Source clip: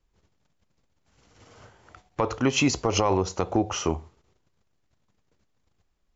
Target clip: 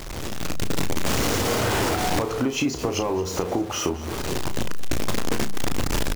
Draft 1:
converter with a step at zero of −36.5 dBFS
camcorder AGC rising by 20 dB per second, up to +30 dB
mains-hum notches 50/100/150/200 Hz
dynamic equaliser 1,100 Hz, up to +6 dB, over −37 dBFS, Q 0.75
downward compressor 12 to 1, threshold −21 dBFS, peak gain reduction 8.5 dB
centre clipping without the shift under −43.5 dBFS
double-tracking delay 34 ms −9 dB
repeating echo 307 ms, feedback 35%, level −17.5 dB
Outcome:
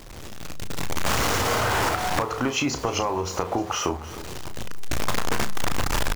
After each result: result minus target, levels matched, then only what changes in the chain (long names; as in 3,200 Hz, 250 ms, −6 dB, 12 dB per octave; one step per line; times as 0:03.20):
echo 85 ms late; converter with a step at zero: distortion −7 dB; 250 Hz band −4.0 dB
change: repeating echo 222 ms, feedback 35%, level −17.5 dB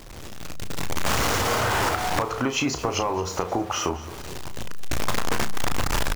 converter with a step at zero: distortion −7 dB; 250 Hz band −4.0 dB
change: converter with a step at zero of −29 dBFS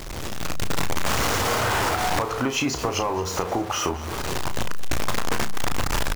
250 Hz band −3.5 dB
change: dynamic equaliser 300 Hz, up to +6 dB, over −37 dBFS, Q 0.75